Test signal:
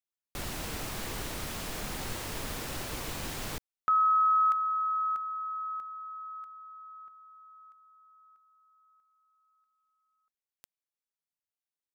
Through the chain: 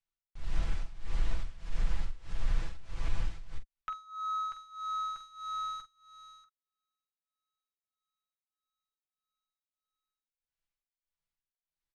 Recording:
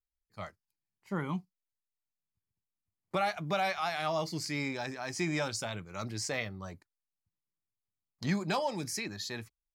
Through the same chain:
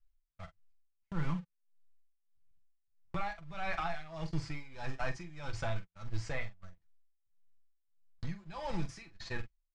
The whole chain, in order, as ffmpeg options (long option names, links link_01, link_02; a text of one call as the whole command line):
ffmpeg -i in.wav -filter_complex "[0:a]aeval=exprs='val(0)+0.5*0.0188*sgn(val(0))':channel_layout=same,agate=range=-51dB:threshold=-35dB:ratio=16:release=39:detection=rms,aemphasis=mode=reproduction:type=riaa,acompressor=threshold=-29dB:ratio=6:attack=0.1:release=291:knee=1:detection=rms,lowpass=frequency=9000:width=0.5412,lowpass=frequency=9000:width=1.3066,tremolo=f=1.6:d=0.9,equalizer=frequency=260:width=0.36:gain=-14,aecho=1:1:6:0.41,acrossover=split=2600[link_01][link_02];[link_02]acompressor=threshold=-59dB:ratio=4:attack=1:release=60[link_03];[link_01][link_03]amix=inputs=2:normalize=0,aecho=1:1:12|45:0.282|0.282,volume=7.5dB" out.wav